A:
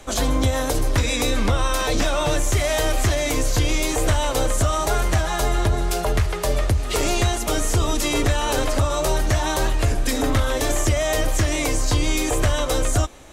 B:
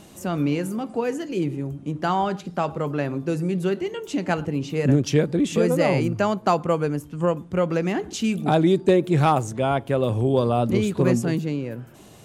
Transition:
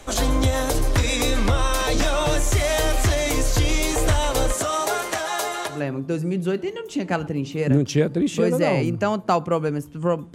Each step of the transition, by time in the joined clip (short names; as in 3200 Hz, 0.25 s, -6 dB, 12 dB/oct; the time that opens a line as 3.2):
A
4.52–5.84 HPF 230 Hz -> 680 Hz
5.75 switch to B from 2.93 s, crossfade 0.18 s